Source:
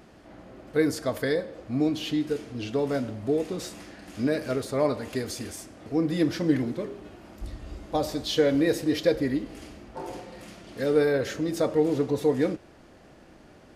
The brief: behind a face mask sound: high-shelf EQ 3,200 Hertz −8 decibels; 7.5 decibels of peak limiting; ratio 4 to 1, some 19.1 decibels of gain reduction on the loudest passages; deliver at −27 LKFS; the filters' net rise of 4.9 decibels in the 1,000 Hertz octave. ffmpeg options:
ffmpeg -i in.wav -af "equalizer=frequency=1000:width_type=o:gain=7.5,acompressor=threshold=-40dB:ratio=4,alimiter=level_in=8dB:limit=-24dB:level=0:latency=1,volume=-8dB,highshelf=frequency=3200:gain=-8,volume=17dB" out.wav

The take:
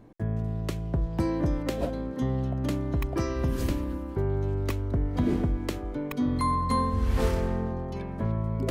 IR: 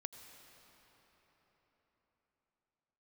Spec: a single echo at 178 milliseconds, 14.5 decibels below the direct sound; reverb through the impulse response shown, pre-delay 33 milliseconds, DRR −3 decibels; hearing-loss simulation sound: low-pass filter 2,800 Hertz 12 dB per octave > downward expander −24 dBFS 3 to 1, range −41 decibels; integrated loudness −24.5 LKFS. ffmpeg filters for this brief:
-filter_complex "[0:a]aecho=1:1:178:0.188,asplit=2[link_01][link_02];[1:a]atrim=start_sample=2205,adelay=33[link_03];[link_02][link_03]afir=irnorm=-1:irlink=0,volume=6.5dB[link_04];[link_01][link_04]amix=inputs=2:normalize=0,lowpass=2800,agate=range=-41dB:threshold=-24dB:ratio=3"

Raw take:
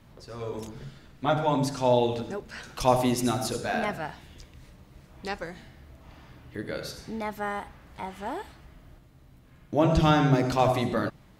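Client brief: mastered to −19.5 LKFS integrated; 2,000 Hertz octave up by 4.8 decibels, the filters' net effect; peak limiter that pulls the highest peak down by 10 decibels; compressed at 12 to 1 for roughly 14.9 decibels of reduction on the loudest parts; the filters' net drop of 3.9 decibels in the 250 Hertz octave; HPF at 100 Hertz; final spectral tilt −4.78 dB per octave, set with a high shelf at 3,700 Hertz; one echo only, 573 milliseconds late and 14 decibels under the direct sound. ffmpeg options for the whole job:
ffmpeg -i in.wav -af "highpass=100,equalizer=frequency=250:width_type=o:gain=-5,equalizer=frequency=2000:width_type=o:gain=7.5,highshelf=frequency=3700:gain=-4.5,acompressor=threshold=-31dB:ratio=12,alimiter=level_in=5dB:limit=-24dB:level=0:latency=1,volume=-5dB,aecho=1:1:573:0.2,volume=21dB" out.wav

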